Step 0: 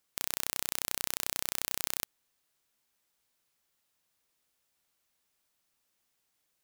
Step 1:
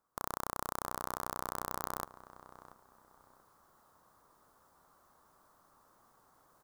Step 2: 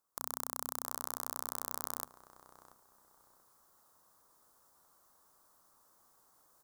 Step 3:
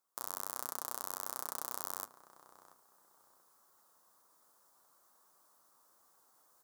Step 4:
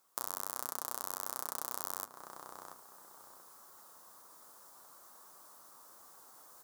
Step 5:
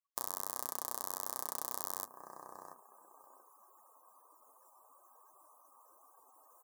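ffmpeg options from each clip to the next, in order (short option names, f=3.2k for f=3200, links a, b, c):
-filter_complex "[0:a]highshelf=f=1.7k:t=q:w=3:g=-13.5,areverse,acompressor=mode=upward:threshold=-55dB:ratio=2.5,areverse,asplit=2[a][b];[b]adelay=684,lowpass=f=1.9k:p=1,volume=-15dB,asplit=2[c][d];[d]adelay=684,lowpass=f=1.9k:p=1,volume=0.3,asplit=2[e][f];[f]adelay=684,lowpass=f=1.9k:p=1,volume=0.3[g];[a][c][e][g]amix=inputs=4:normalize=0,volume=2.5dB"
-af "bass=f=250:g=-2,treble=f=4k:g=11,bandreject=f=50:t=h:w=6,bandreject=f=100:t=h:w=6,bandreject=f=150:t=h:w=6,bandreject=f=200:t=h:w=6,bandreject=f=250:t=h:w=6,volume=-5.5dB"
-af "highpass=f=260:p=1,flanger=delay=5:depth=7:regen=-44:speed=1.3:shape=triangular,volume=3.5dB"
-af "acompressor=threshold=-43dB:ratio=10,volume=11.5dB"
-af "afftdn=nr=34:nf=-60,asuperstop=centerf=1400:order=4:qfactor=4.9"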